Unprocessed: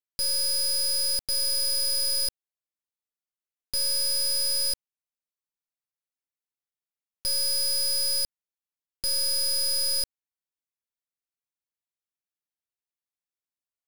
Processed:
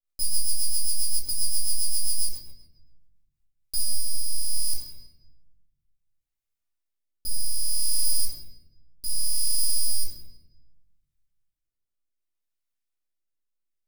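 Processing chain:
Bessel high-pass filter 220 Hz, order 2
first difference
half-wave rectification
rectangular room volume 570 cubic metres, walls mixed, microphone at 2.7 metres
rotating-speaker cabinet horn 7.5 Hz, later 0.65 Hz, at 0:02.93

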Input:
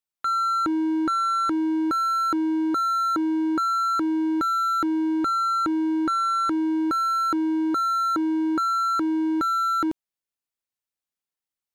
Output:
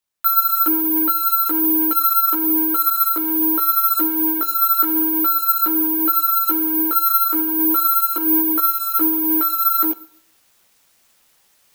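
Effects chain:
high-pass filter 380 Hz 12 dB per octave
reversed playback
upward compression, threshold −47 dBFS
reversed playback
multi-voice chorus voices 6, 0.49 Hz, delay 16 ms, depth 3.7 ms
in parallel at −6.5 dB: hard clipping −33.5 dBFS, distortion −7 dB
on the sum: four-comb reverb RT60 0.63 s, combs from 30 ms, DRR 16 dB
bad sample-rate conversion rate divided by 3×, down none, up zero stuff
level +4 dB

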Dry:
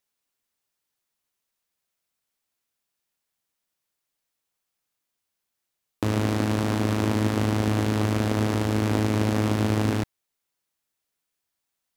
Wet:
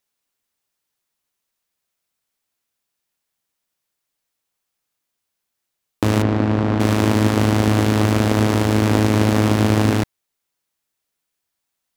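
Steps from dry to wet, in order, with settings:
in parallel at −4 dB: centre clipping without the shift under −28.5 dBFS
0:06.22–0:06.80: on the sum: head-to-tape spacing loss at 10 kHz 26 dB
level +3 dB

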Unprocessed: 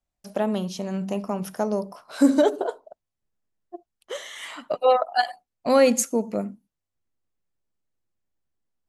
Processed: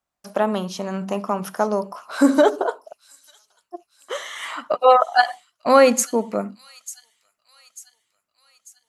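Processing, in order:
high-pass filter 190 Hz 6 dB per octave
parametric band 1,200 Hz +8.5 dB 0.99 octaves
on a send: delay with a high-pass on its return 894 ms, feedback 50%, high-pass 4,700 Hz, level −12.5 dB
on the sum: level +3 dB

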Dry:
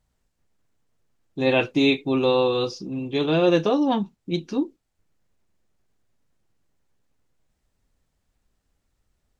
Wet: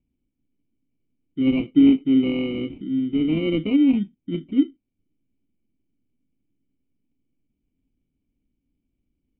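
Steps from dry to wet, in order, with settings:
decimation without filtering 26×
formant resonators in series i
level +8 dB

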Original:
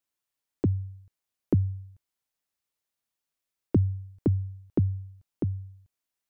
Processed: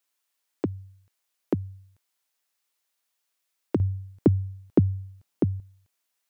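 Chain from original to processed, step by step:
high-pass filter 740 Hz 6 dB per octave, from 0:03.80 190 Hz, from 0:05.60 580 Hz
level +8.5 dB

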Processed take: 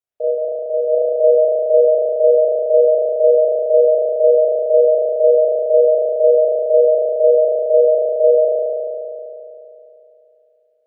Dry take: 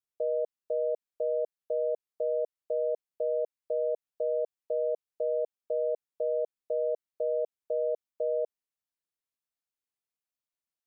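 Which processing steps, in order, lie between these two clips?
flat-topped bell 560 Hz +8.5 dB 1 octave, from 0:00.89 +15.5 dB
spring reverb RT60 3 s, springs 35 ms, chirp 55 ms, DRR −9 dB
level −2.5 dB

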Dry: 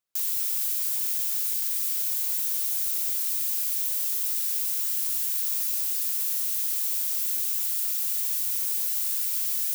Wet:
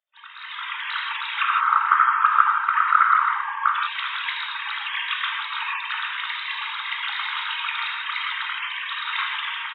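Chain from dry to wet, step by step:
three sine waves on the formant tracks
gate on every frequency bin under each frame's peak −15 dB weak
automatic gain control gain up to 16.5 dB
0:01.42–0:03.74: low-pass with resonance 1,300 Hz, resonance Q 7
multiband delay without the direct sound highs, lows 170 ms, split 490 Hz
reverb whose tail is shaped and stops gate 190 ms flat, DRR −0.5 dB
level −3 dB

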